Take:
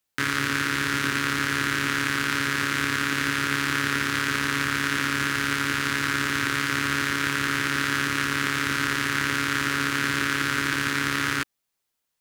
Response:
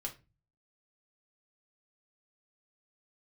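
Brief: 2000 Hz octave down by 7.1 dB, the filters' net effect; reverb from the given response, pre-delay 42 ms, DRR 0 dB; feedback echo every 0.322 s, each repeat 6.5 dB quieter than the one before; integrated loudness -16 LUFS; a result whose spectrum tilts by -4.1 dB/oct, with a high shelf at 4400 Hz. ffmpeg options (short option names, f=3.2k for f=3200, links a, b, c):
-filter_complex "[0:a]equalizer=f=2k:t=o:g=-8,highshelf=f=4.4k:g=-8.5,aecho=1:1:322|644|966|1288|1610|1932:0.473|0.222|0.105|0.0491|0.0231|0.0109,asplit=2[a][b];[1:a]atrim=start_sample=2205,adelay=42[c];[b][c]afir=irnorm=-1:irlink=0,volume=1dB[d];[a][d]amix=inputs=2:normalize=0,volume=8.5dB"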